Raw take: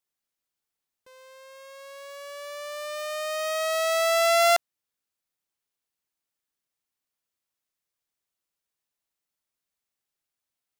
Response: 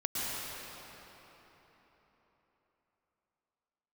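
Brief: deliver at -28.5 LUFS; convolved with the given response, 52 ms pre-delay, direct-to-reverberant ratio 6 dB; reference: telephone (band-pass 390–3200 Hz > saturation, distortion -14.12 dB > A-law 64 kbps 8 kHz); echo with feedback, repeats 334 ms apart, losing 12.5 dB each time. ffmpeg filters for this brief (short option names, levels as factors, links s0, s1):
-filter_complex "[0:a]aecho=1:1:334|668|1002:0.237|0.0569|0.0137,asplit=2[s0][s1];[1:a]atrim=start_sample=2205,adelay=52[s2];[s1][s2]afir=irnorm=-1:irlink=0,volume=0.224[s3];[s0][s3]amix=inputs=2:normalize=0,highpass=390,lowpass=3200,asoftclip=threshold=0.141" -ar 8000 -c:a pcm_alaw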